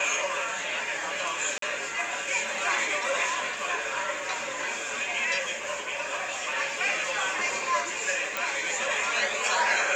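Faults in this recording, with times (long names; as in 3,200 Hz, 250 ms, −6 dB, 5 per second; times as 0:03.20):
0:01.58–0:01.62: drop-out 43 ms
0:08.37: click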